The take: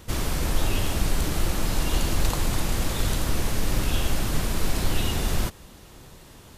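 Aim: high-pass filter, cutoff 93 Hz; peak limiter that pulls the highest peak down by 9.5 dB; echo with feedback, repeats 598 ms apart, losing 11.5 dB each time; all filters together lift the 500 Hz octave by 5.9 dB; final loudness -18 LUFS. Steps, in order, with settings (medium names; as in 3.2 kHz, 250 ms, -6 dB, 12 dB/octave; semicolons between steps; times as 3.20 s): high-pass 93 Hz; peaking EQ 500 Hz +7.5 dB; peak limiter -20 dBFS; feedback delay 598 ms, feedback 27%, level -11.5 dB; trim +11.5 dB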